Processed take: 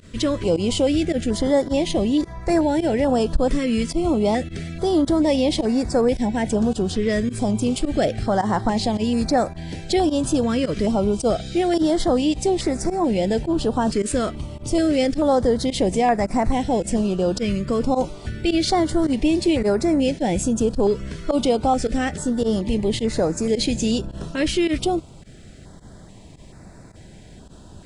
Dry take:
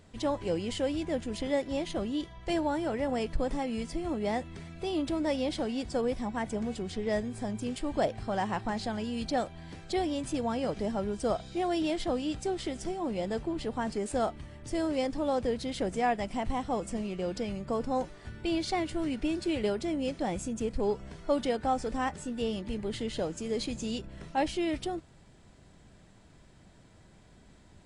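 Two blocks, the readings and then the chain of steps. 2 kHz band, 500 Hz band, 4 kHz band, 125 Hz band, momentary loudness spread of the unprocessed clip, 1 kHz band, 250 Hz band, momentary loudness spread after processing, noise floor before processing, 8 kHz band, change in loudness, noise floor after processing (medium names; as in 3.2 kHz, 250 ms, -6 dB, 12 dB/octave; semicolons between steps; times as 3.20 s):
+8.0 dB, +11.0 dB, +11.0 dB, +13.0 dB, 5 LU, +9.0 dB, +12.5 dB, 4 LU, -57 dBFS, +13.5 dB, +11.5 dB, -44 dBFS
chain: in parallel at +2 dB: peak limiter -26 dBFS, peak gain reduction 10 dB; on the sum: volume shaper 107 bpm, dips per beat 1, -20 dB, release 62 ms; step-sequenced notch 2.3 Hz 810–3100 Hz; trim +7 dB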